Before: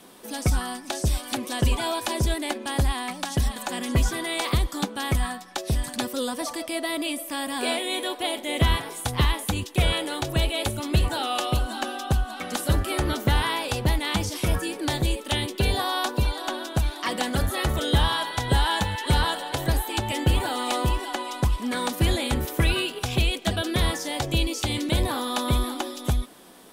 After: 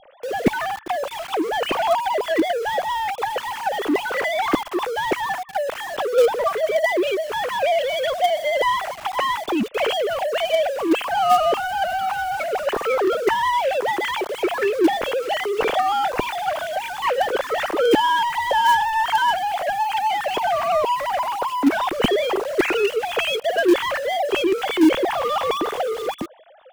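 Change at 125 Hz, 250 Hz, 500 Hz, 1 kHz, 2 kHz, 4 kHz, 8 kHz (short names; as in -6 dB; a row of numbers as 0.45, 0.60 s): -17.5, +4.5, +10.5, +9.5, +5.5, 0.0, -5.5 dB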